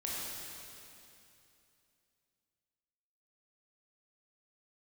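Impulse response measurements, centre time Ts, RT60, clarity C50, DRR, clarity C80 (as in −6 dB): 175 ms, 2.8 s, −3.0 dB, −6.0 dB, −1.5 dB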